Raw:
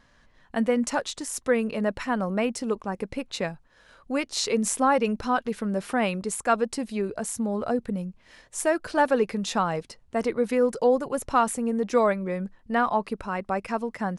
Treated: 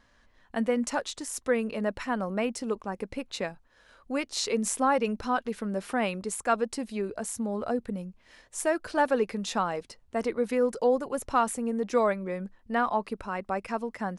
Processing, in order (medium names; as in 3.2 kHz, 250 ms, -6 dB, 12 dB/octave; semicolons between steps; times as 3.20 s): peaking EQ 150 Hz -13 dB 0.26 oct; trim -3 dB